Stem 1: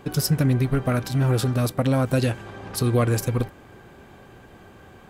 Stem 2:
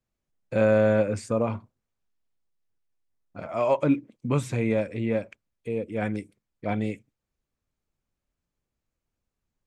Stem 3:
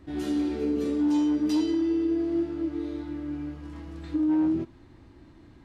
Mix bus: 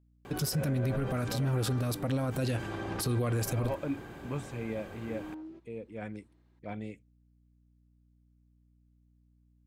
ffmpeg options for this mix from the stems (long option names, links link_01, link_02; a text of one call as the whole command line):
ffmpeg -i stem1.wav -i stem2.wav -i stem3.wav -filter_complex "[0:a]adelay=250,volume=0.5dB[link_01];[1:a]aeval=exprs='val(0)+0.00251*(sin(2*PI*60*n/s)+sin(2*PI*2*60*n/s)/2+sin(2*PI*3*60*n/s)/3+sin(2*PI*4*60*n/s)/4+sin(2*PI*5*60*n/s)/5)':channel_layout=same,volume=-12dB[link_02];[2:a]highpass=330,adelay=950,volume=-16.5dB[link_03];[link_01][link_02][link_03]amix=inputs=3:normalize=0,alimiter=limit=-23.5dB:level=0:latency=1:release=46" out.wav